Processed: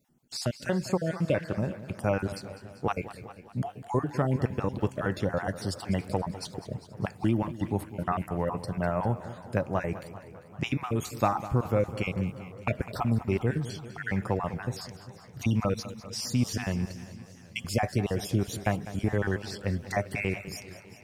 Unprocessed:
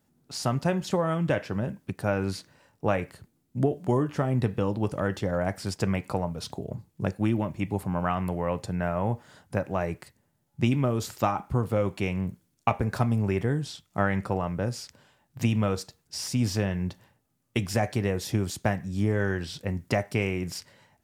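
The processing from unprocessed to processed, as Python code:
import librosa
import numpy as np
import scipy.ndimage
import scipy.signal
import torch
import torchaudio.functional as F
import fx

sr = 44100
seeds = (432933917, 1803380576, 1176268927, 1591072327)

y = fx.spec_dropout(x, sr, seeds[0], share_pct=36)
y = fx.echo_feedback(y, sr, ms=201, feedback_pct=58, wet_db=-14.5)
y = fx.echo_warbled(y, sr, ms=391, feedback_pct=66, rate_hz=2.8, cents=107, wet_db=-21.0)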